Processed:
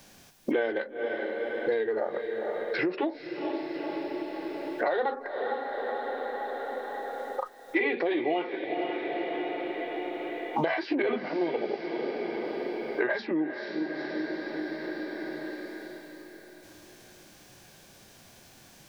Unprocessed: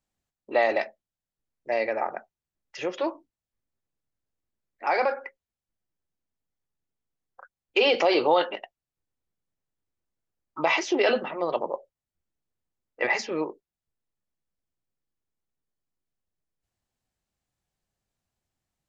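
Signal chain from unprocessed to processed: band-stop 1.3 kHz, Q 9; formant shift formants -4 st; in parallel at +0.5 dB: compression, threshold -33 dBFS, peak gain reduction 15.5 dB; on the sum: harmonic-percussive split harmonic +4 dB; on a send: echo that smears into a reverb 468 ms, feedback 43%, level -12 dB; on the sum: three bands compressed up and down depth 100%; trim -6 dB

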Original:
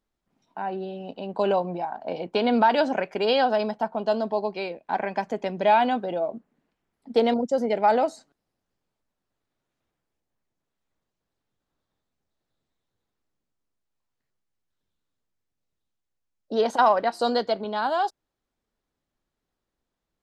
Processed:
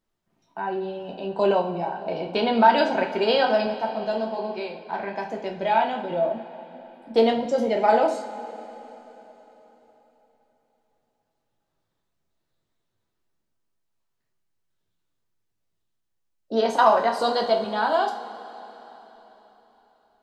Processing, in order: 3.66–6.11 s: flange 1.1 Hz, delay 7.8 ms, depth 8.5 ms, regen +62%; two-slope reverb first 0.39 s, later 4 s, from -18 dB, DRR 1 dB

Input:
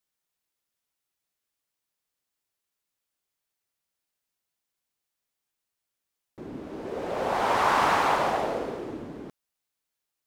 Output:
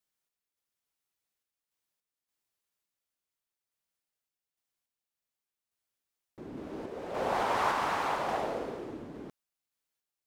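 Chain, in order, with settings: random-step tremolo; trim -2 dB

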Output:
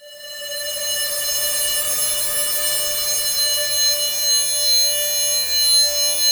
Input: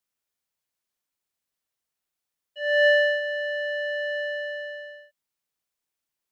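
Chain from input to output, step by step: level rider gain up to 5 dB; integer overflow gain 21 dB; Paulstretch 4.8×, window 0.50 s, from 2.43 s; Schroeder reverb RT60 0.35 s, DRR -4 dB

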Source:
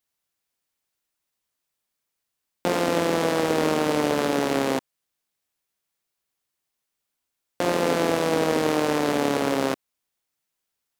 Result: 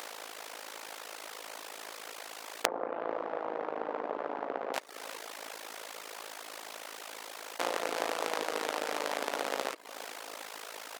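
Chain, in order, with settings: spectral levelling over time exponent 0.4; compression 5:1, threshold -30 dBFS, peak gain reduction 14.5 dB; high-pass 630 Hz 12 dB/octave; feedback delay 378 ms, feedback 55%, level -14 dB; AM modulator 54 Hz, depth 70%; 2.66–4.74 s: low-pass 1.1 kHz 12 dB/octave; reverb removal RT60 0.57 s; trim +8 dB

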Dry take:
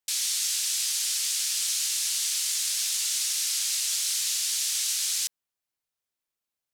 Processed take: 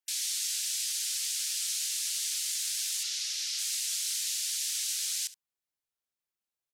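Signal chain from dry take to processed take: 3.03–3.59 s: resonant high shelf 6.8 kHz -6.5 dB, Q 1.5; spectral gate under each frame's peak -25 dB strong; delay 70 ms -17.5 dB; trim -5 dB

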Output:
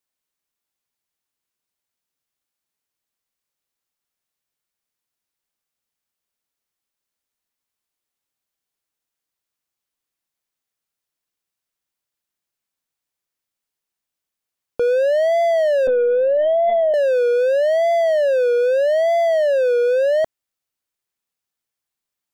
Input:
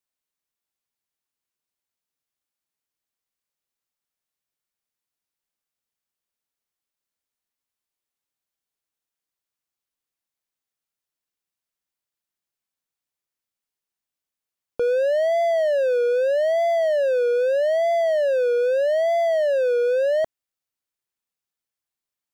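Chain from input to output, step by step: 15.87–16.94 s: LPC vocoder at 8 kHz pitch kept; trim +3.5 dB

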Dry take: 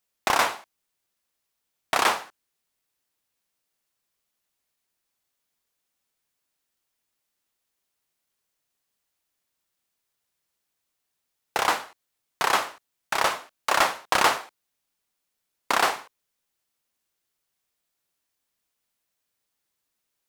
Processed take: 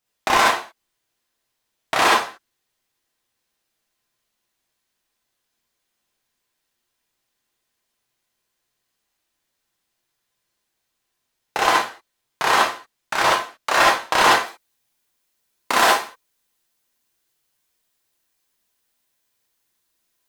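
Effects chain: treble shelf 7.7 kHz -6 dB, from 14.40 s +2 dB; gated-style reverb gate 90 ms rising, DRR -4 dB; trim +1 dB

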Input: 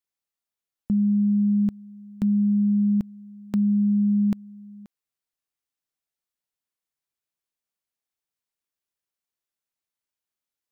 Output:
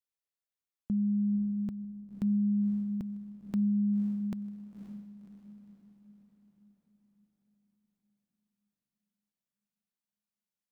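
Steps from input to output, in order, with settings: echo that smears into a reverb 544 ms, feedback 51%, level -9 dB; trim -8 dB

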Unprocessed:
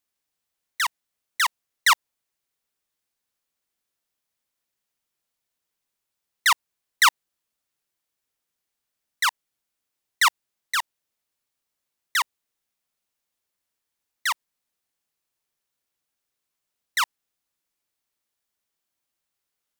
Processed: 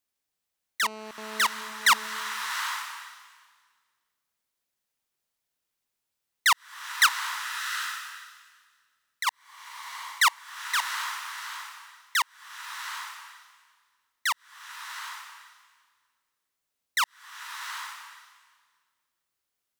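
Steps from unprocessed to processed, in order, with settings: 0.83–1.46 s: mobile phone buzz -39 dBFS; 7.06–9.27 s: compression 3:1, threshold -31 dBFS, peak gain reduction 13 dB; swelling reverb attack 790 ms, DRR 6 dB; trim -2 dB

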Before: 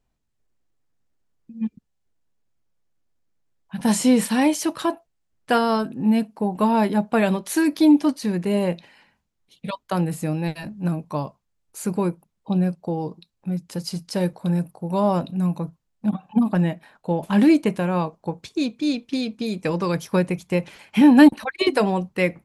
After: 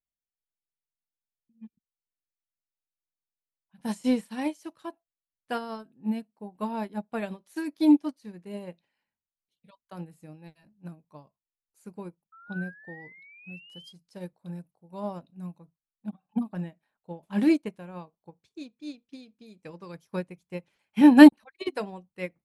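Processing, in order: painted sound rise, 12.32–13.93 s, 1.3–3.3 kHz -26 dBFS; upward expansion 2.5:1, over -27 dBFS; trim +1.5 dB

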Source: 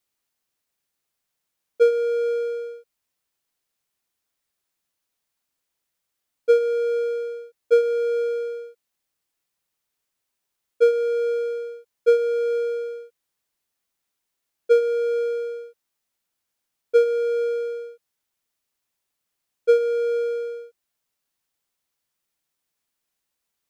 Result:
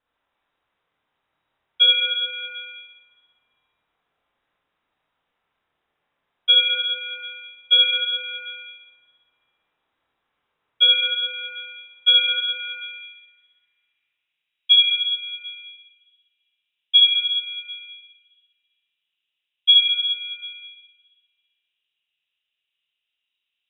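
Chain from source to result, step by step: low-pass sweep 2.9 kHz -> 1 kHz, 11.81–15.01 s; Schroeder reverb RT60 1.6 s, combs from 25 ms, DRR -6 dB; frequency inversion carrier 3.8 kHz

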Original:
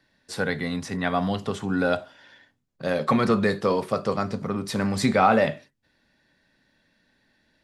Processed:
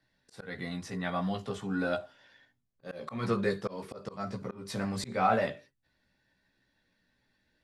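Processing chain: chorus voices 6, 0.46 Hz, delay 16 ms, depth 1.5 ms; slow attack 194 ms; trim -5 dB

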